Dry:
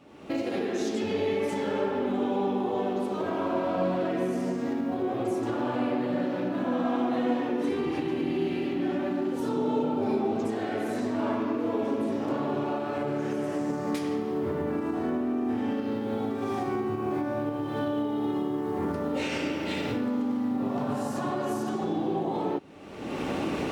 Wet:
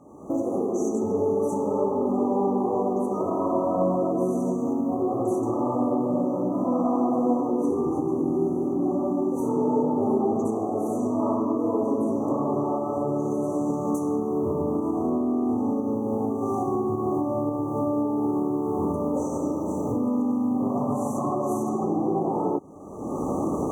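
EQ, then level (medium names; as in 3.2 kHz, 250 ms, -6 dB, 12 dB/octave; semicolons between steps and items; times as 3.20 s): brick-wall FIR band-stop 1.3–5.8 kHz; +4.0 dB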